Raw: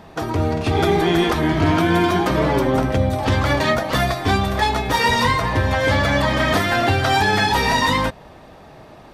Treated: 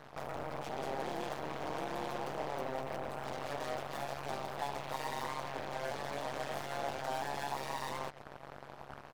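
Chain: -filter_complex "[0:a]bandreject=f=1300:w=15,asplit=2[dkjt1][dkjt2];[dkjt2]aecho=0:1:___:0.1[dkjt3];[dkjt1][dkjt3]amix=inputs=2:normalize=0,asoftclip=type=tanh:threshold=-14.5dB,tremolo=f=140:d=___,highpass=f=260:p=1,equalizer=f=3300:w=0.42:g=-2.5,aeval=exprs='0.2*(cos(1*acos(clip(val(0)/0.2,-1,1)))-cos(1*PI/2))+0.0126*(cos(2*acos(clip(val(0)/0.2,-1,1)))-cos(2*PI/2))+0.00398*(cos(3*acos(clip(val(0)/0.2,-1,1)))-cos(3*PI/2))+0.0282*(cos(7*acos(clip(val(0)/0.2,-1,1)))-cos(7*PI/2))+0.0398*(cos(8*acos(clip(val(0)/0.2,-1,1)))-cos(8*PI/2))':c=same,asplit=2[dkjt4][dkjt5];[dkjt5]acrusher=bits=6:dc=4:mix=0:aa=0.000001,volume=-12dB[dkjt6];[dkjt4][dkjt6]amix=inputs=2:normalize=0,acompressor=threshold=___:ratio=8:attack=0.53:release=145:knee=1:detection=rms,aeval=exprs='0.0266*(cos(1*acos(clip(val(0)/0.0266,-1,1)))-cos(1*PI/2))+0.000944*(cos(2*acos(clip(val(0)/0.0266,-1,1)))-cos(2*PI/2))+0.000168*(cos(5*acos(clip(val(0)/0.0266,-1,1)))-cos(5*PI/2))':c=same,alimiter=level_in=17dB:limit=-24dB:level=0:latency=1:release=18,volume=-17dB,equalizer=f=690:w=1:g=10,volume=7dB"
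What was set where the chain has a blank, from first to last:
128, 0.919, -38dB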